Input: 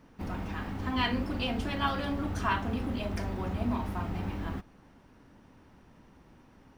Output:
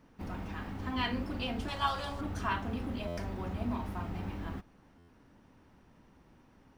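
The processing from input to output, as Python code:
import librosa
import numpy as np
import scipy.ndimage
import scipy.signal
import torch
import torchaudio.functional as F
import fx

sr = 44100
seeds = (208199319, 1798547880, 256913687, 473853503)

y = fx.graphic_eq(x, sr, hz=(250, 1000, 2000, 4000, 8000), db=(-11, 6, -4, 4, 10), at=(1.68, 2.21))
y = fx.buffer_glitch(y, sr, at_s=(3.07, 4.98), block=512, repeats=8)
y = y * librosa.db_to_amplitude(-4.0)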